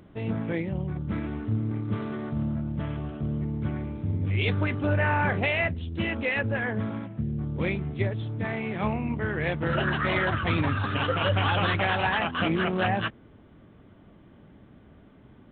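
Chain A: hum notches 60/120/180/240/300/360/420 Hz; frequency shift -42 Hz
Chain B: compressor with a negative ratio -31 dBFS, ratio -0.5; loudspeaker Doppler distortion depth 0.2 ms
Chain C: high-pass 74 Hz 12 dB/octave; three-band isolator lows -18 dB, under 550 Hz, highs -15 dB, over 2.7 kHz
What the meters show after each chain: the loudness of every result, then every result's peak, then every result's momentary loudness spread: -28.5 LUFS, -32.5 LUFS, -31.5 LUFS; -12.0 dBFS, -16.5 dBFS, -14.5 dBFS; 8 LU, 20 LU, 18 LU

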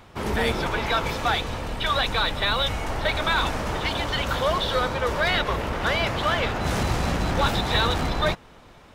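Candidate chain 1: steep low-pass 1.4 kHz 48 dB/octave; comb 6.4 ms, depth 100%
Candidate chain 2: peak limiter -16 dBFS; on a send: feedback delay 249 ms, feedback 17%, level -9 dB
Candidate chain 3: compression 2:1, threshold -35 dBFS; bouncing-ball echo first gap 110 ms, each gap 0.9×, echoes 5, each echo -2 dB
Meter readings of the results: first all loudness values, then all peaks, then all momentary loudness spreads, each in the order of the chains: -24.0 LUFS, -25.5 LUFS, -28.0 LUFS; -8.0 dBFS, -13.5 dBFS, -15.0 dBFS; 5 LU, 3 LU, 2 LU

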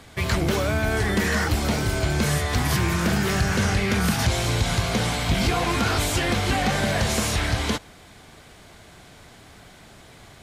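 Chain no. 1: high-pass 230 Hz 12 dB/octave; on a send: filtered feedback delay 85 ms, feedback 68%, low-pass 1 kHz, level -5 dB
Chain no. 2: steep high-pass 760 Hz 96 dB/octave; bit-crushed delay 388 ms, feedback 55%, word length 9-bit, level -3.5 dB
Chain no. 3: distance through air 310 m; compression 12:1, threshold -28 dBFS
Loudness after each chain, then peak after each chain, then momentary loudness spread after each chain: -24.0 LUFS, -25.0 LUFS, -33.0 LUFS; -11.0 dBFS, -11.0 dBFS, -20.5 dBFS; 3 LU, 8 LU, 18 LU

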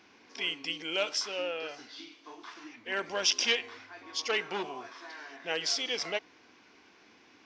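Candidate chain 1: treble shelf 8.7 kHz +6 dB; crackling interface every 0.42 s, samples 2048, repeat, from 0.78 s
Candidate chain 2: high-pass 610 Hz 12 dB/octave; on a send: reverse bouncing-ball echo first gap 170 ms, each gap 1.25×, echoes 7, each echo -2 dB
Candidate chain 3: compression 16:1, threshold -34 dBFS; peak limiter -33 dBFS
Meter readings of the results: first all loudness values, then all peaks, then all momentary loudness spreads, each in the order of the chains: -31.0 LUFS, -30.0 LUFS, -43.5 LUFS; -12.5 dBFS, -12.0 dBFS, -33.0 dBFS; 19 LU, 11 LU, 17 LU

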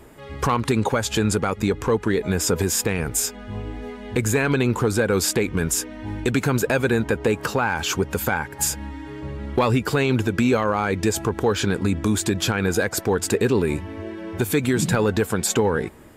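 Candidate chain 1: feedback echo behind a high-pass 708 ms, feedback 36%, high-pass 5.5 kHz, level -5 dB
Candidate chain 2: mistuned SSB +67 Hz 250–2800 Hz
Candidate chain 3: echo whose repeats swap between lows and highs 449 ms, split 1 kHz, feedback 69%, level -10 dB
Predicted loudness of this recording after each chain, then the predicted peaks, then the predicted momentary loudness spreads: -22.0 LUFS, -24.5 LUFS, -22.0 LUFS; -8.5 dBFS, -8.5 dBFS, -8.0 dBFS; 7 LU, 14 LU, 7 LU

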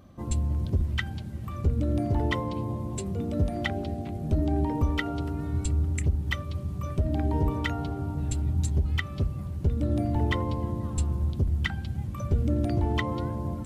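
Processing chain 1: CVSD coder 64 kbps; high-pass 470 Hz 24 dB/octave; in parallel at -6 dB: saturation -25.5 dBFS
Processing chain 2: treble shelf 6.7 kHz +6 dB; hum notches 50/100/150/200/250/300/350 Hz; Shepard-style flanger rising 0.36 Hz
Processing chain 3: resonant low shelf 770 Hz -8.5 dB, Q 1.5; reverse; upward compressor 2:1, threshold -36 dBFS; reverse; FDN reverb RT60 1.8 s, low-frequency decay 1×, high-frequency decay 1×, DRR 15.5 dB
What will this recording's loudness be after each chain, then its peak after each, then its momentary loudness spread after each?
-35.0 LUFS, -32.5 LUFS, -35.5 LUFS; -14.0 dBFS, -17.0 dBFS, -14.5 dBFS; 12 LU, 7 LU, 7 LU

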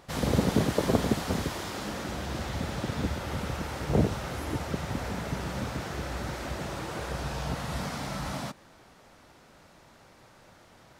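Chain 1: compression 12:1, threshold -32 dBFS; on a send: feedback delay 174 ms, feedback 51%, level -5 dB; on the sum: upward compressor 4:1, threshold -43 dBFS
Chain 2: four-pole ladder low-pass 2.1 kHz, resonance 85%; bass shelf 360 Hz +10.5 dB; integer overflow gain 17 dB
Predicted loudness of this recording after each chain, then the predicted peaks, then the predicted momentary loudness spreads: -36.0 LUFS, -36.5 LUFS; -20.5 dBFS, -17.0 dBFS; 14 LU, 8 LU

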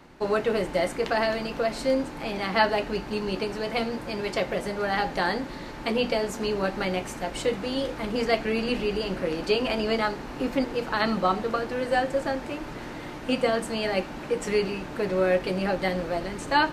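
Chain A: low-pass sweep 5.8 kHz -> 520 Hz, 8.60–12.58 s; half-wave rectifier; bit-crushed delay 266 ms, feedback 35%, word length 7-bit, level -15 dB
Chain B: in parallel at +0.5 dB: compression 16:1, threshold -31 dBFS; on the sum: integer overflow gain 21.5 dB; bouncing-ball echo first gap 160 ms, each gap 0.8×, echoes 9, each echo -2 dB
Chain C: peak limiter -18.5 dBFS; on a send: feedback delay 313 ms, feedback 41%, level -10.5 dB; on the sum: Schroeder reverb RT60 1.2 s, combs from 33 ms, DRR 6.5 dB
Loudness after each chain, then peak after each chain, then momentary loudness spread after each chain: -29.5 LUFS, -22.0 LUFS, -28.5 LUFS; -6.5 dBFS, -11.0 dBFS, -15.0 dBFS; 9 LU, 2 LU, 4 LU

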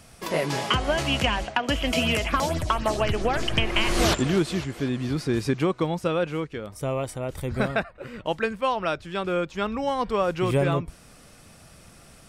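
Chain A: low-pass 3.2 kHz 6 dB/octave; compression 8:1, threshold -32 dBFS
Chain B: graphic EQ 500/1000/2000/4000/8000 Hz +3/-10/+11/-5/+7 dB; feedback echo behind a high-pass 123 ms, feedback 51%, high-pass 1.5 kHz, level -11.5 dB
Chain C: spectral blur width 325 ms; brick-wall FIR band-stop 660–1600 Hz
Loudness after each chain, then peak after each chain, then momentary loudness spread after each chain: -36.5 LUFS, -24.0 LUFS, -30.5 LUFS; -17.0 dBFS, -5.0 dBFS, -14.5 dBFS; 6 LU, 9 LU, 9 LU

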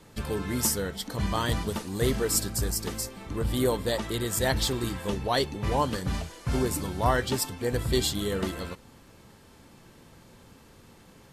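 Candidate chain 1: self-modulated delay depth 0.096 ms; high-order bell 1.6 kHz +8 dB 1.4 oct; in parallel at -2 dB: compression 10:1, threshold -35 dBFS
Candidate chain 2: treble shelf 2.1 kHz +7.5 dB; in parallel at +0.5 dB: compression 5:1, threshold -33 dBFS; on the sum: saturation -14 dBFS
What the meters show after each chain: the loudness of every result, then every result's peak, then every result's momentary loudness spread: -26.0 LUFS, -24.5 LUFS; -6.5 dBFS, -14.0 dBFS; 7 LU, 7 LU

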